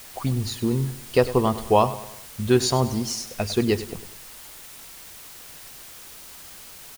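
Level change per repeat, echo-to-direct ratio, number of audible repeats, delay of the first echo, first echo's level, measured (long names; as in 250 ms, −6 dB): −6.5 dB, −14.0 dB, 4, 100 ms, −15.0 dB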